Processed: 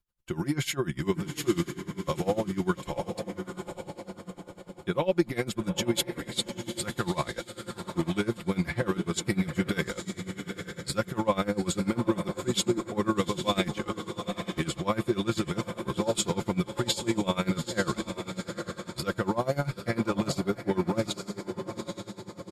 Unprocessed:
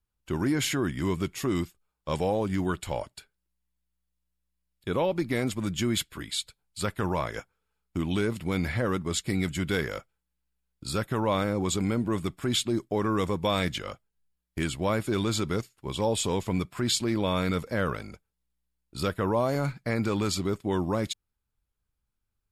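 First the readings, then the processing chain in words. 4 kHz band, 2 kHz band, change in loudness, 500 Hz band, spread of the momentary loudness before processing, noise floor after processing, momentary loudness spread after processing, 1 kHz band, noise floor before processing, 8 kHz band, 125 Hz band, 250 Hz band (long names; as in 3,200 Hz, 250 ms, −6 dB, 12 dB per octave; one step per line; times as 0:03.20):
−1.0 dB, −1.0 dB, −1.5 dB, −0.5 dB, 9 LU, −53 dBFS, 10 LU, −1.0 dB, −82 dBFS, −0.5 dB, −1.5 dB, 0.0 dB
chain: comb filter 5.7 ms, depth 56%
on a send: feedback delay with all-pass diffusion 841 ms, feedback 48%, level −7.5 dB
on the sum: tremolo with a sine in dB 10 Hz, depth 20 dB
level +2.5 dB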